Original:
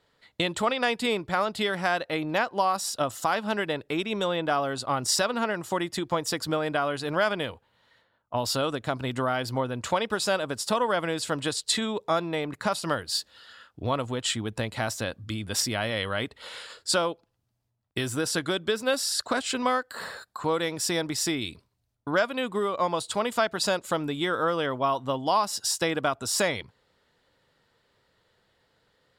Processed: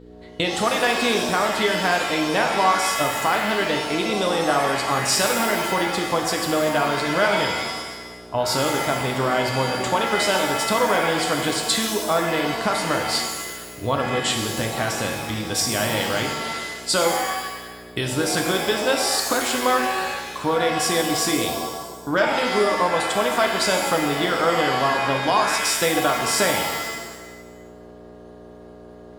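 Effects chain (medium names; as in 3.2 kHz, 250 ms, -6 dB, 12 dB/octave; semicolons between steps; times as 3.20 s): mains buzz 60 Hz, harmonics 8, -49 dBFS -1 dB/octave; pitch-shifted reverb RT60 1.1 s, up +7 st, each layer -2 dB, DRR 2.5 dB; trim +3 dB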